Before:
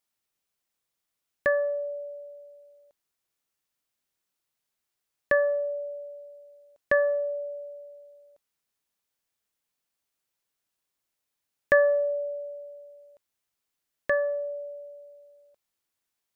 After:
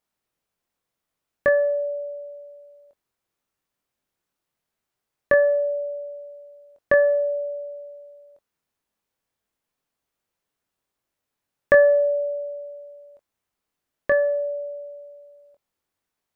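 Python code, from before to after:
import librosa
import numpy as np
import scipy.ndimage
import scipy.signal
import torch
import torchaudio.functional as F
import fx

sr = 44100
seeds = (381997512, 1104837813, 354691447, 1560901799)

y = fx.high_shelf(x, sr, hz=2000.0, db=-10.0)
y = fx.doubler(y, sr, ms=23.0, db=-7.5)
y = y * librosa.db_to_amplitude(6.5)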